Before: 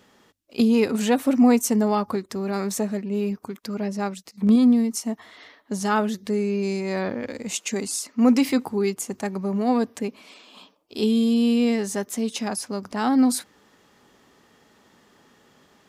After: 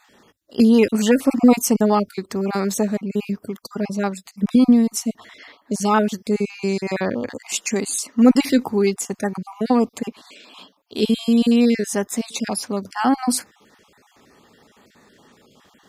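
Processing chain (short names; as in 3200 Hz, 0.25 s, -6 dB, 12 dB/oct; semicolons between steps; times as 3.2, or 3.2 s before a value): random spectral dropouts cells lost 28%; added harmonics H 4 -38 dB, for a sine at -6 dBFS; gain +5 dB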